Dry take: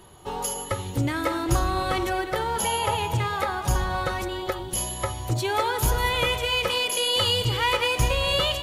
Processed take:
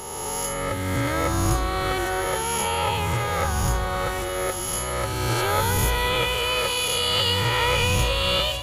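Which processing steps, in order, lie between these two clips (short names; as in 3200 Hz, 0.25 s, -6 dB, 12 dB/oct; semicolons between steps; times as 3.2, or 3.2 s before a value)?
spectral swells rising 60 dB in 2.15 s; split-band echo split 700 Hz, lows 0.367 s, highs 0.613 s, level -15.5 dB; gain -3 dB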